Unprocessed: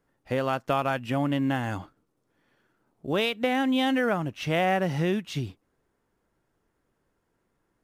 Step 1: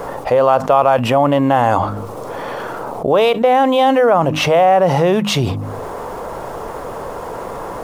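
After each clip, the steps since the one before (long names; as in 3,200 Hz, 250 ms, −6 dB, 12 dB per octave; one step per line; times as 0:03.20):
flat-topped bell 730 Hz +12.5 dB
hum removal 51.5 Hz, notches 6
envelope flattener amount 70%
level +1 dB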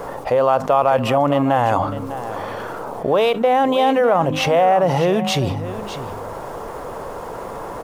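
single-tap delay 602 ms −12.5 dB
level −3.5 dB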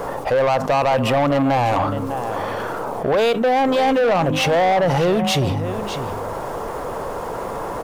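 soft clipping −16.5 dBFS, distortion −10 dB
level +3.5 dB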